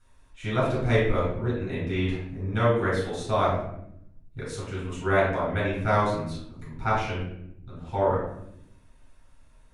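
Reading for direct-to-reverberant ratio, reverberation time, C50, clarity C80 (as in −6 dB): −8.0 dB, 0.75 s, 1.5 dB, 5.5 dB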